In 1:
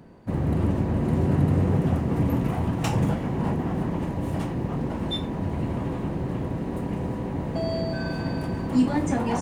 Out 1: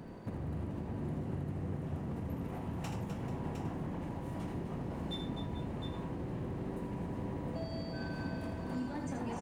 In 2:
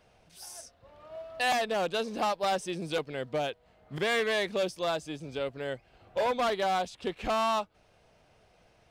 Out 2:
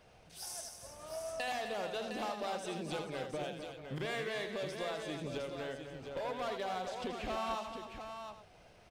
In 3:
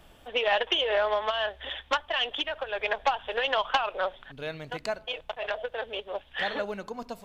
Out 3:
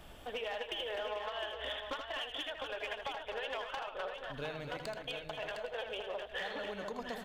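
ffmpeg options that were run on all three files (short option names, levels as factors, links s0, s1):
-filter_complex "[0:a]acompressor=threshold=0.0112:ratio=8,aeval=exprs='clip(val(0),-1,0.0168)':c=same,asplit=2[s0][s1];[s1]aecho=0:1:80|254|438|709|810:0.422|0.376|0.188|0.422|0.133[s2];[s0][s2]amix=inputs=2:normalize=0,volume=1.12"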